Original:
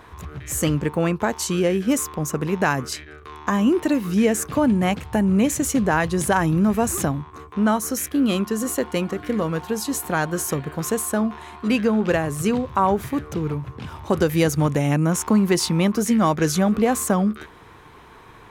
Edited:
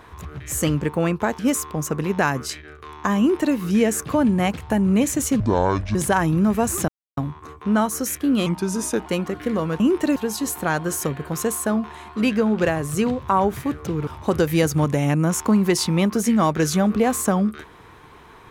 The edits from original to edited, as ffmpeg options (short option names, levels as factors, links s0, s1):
-filter_complex "[0:a]asplit=10[s0][s1][s2][s3][s4][s5][s6][s7][s8][s9];[s0]atrim=end=1.392[s10];[s1]atrim=start=1.818:end=5.834[s11];[s2]atrim=start=5.83:end=6.15,asetpts=PTS-STARTPTS,asetrate=25578,aresample=44100,atrim=end_sample=24331,asetpts=PTS-STARTPTS[s12];[s3]atrim=start=6.146:end=7.08,asetpts=PTS-STARTPTS,afade=t=out:st=0.93:d=0.004:c=hsin,apad=pad_dur=0.29[s13];[s4]atrim=start=7.08:end=8.374,asetpts=PTS-STARTPTS,afade=t=in:d=0.004:c=hsin[s14];[s5]atrim=start=8.37:end=8.89,asetpts=PTS-STARTPTS,asetrate=38367,aresample=44100[s15];[s6]atrim=start=8.886:end=9.632[s16];[s7]atrim=start=3.618:end=3.982[s17];[s8]atrim=start=9.628:end=13.542[s18];[s9]atrim=start=13.888[s19];[s10][s11]acrossfade=d=0.004:c1=hsin:c2=hsin[s20];[s20][s12]acrossfade=d=0.004:c1=hsin:c2=hsin[s21];[s13][s14]concat=n=2:v=0:a=1[s22];[s21][s22]acrossfade=d=0.004:c1=hsin:c2=hsin[s23];[s23][s15]acrossfade=d=0.004:c1=hsin:c2=hsin[s24];[s24][s16]acrossfade=d=0.004:c1=hsin:c2=hsin[s25];[s25][s17]acrossfade=d=0.004:c1=hsin:c2=hsin[s26];[s26][s18]acrossfade=d=0.004:c1=hsin:c2=hsin[s27];[s27][s19]acrossfade=d=0.004:c1=hsin:c2=hsin"